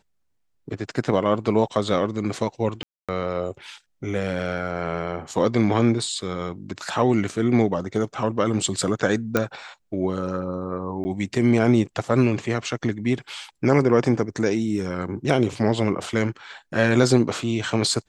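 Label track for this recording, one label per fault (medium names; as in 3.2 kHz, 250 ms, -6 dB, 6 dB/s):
2.830000	3.090000	dropout 256 ms
9.370000	9.370000	pop -6 dBFS
11.040000	11.050000	dropout 10 ms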